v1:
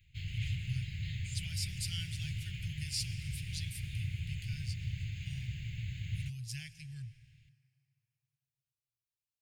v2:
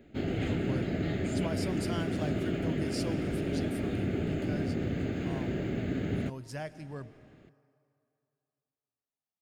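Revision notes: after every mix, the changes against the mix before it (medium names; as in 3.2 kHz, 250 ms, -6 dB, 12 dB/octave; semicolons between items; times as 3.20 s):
speech -5.5 dB; master: remove elliptic band-stop 120–2400 Hz, stop band 40 dB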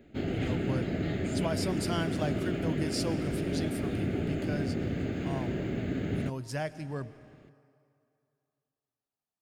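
speech +5.0 dB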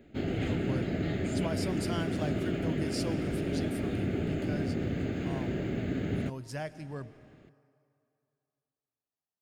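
speech -3.5 dB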